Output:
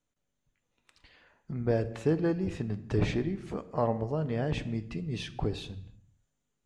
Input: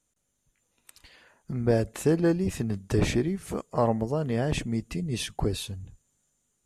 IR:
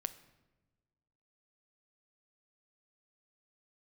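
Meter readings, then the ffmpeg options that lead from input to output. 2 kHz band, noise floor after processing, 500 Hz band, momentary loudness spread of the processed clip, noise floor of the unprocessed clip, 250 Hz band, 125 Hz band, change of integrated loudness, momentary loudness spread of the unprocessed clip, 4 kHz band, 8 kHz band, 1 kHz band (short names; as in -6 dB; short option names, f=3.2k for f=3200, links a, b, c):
-4.5 dB, -81 dBFS, -4.0 dB, 8 LU, -76 dBFS, -4.5 dB, -3.0 dB, -4.0 dB, 9 LU, -6.5 dB, -14.5 dB, -4.0 dB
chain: -filter_complex "[0:a]lowpass=4.2k[a];[1:a]atrim=start_sample=2205,afade=t=out:st=0.36:d=0.01,atrim=end_sample=16317[b];[a][b]afir=irnorm=-1:irlink=0,volume=-3dB"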